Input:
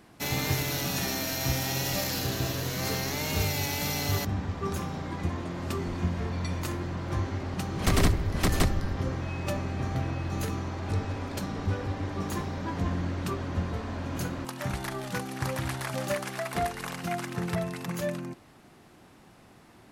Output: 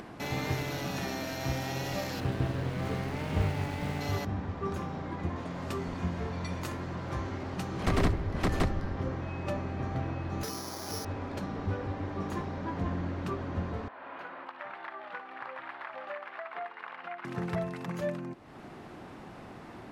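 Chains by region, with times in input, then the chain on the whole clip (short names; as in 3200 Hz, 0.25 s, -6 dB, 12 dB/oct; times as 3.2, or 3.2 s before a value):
2.2–4.01 self-modulated delay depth 0.3 ms + tone controls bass +6 dB, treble -7 dB
5.36–7.83 high shelf 4500 Hz +9.5 dB + notches 50/100/150/200/250/300/350 Hz + doubler 16 ms -12.5 dB
10.43–11.05 HPF 320 Hz 6 dB/oct + careless resampling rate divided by 8×, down filtered, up zero stuff
13.88–17.25 HPF 960 Hz + air absorption 470 m + flutter echo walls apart 9.9 m, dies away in 0.28 s
whole clip: LPF 1600 Hz 6 dB/oct; low shelf 210 Hz -5 dB; upward compressor, threshold -35 dBFS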